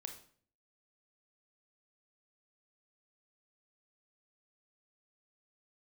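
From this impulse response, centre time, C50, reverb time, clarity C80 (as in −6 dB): 16 ms, 8.5 dB, 0.50 s, 13.0 dB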